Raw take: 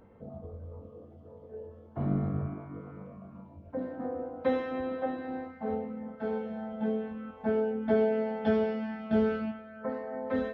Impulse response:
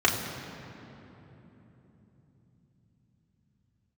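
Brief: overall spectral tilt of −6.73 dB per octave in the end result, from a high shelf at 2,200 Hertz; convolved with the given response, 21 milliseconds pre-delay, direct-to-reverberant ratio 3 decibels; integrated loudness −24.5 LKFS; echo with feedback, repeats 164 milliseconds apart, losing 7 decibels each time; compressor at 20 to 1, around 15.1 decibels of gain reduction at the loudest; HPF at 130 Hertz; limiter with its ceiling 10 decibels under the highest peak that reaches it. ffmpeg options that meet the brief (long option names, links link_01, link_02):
-filter_complex "[0:a]highpass=130,highshelf=frequency=2200:gain=-5,acompressor=threshold=-37dB:ratio=20,alimiter=level_in=13dB:limit=-24dB:level=0:latency=1,volume=-13dB,aecho=1:1:164|328|492|656|820:0.447|0.201|0.0905|0.0407|0.0183,asplit=2[link_01][link_02];[1:a]atrim=start_sample=2205,adelay=21[link_03];[link_02][link_03]afir=irnorm=-1:irlink=0,volume=-18.5dB[link_04];[link_01][link_04]amix=inputs=2:normalize=0,volume=17.5dB"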